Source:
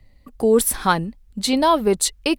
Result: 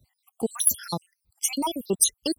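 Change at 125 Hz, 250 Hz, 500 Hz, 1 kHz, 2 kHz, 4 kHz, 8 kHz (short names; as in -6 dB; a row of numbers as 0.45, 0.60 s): -9.0, -9.5, -13.5, -13.5, -15.5, -6.0, +1.0 dB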